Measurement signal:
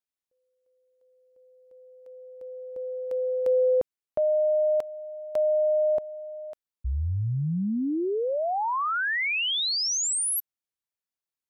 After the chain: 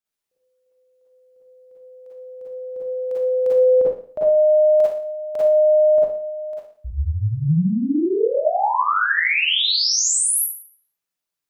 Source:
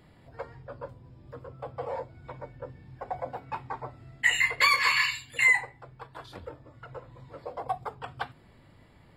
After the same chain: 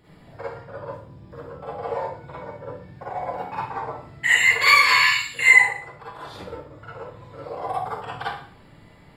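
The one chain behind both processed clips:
four-comb reverb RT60 0.5 s, DRR −8 dB
level −1 dB

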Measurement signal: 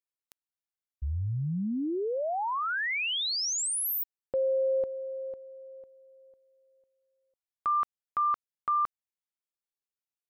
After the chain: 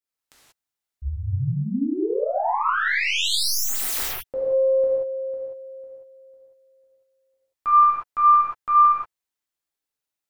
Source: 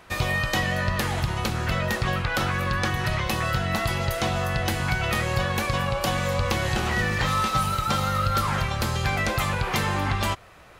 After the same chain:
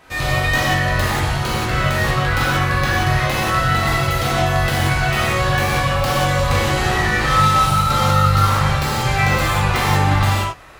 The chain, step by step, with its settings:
stylus tracing distortion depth 0.06 ms
reverb whose tail is shaped and stops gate 210 ms flat, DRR −8 dB
level −1 dB

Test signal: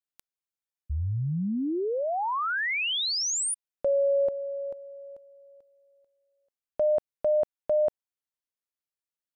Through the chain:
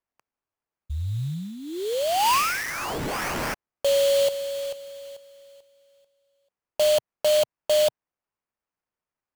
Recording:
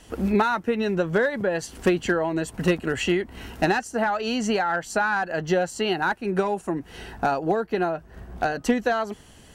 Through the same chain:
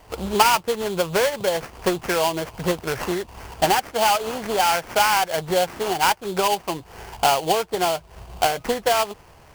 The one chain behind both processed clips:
octave-band graphic EQ 125/250/500/1,000/2,000 Hz +3/−11/+3/+10/−5 dB
sample-rate reduction 3,800 Hz, jitter 20%

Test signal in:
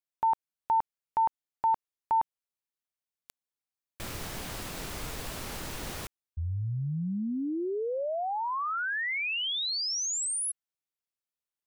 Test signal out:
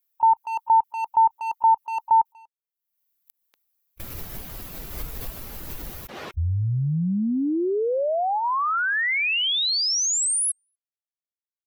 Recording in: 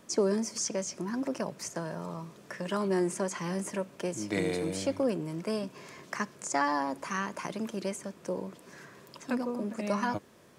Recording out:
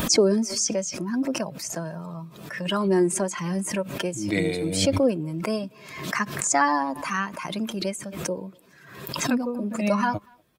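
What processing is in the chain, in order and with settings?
spectral dynamics exaggerated over time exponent 1.5
far-end echo of a speakerphone 240 ms, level −29 dB
background raised ahead of every attack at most 61 dB per second
level +9 dB

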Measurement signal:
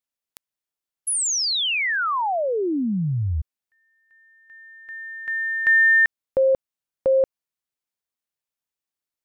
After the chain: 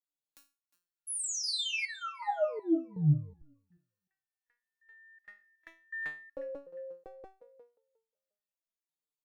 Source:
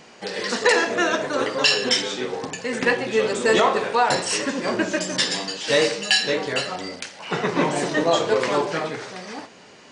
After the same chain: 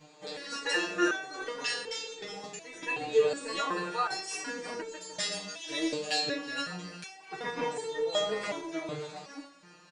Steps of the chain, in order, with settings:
notch filter 3,000 Hz, Q 14
comb filter 6.4 ms, depth 96%
on a send: feedback echo with a high-pass in the loop 356 ms, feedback 17%, high-pass 260 Hz, level −16.5 dB
on the sum: step-sequenced resonator 2.7 Hz 150–450 Hz

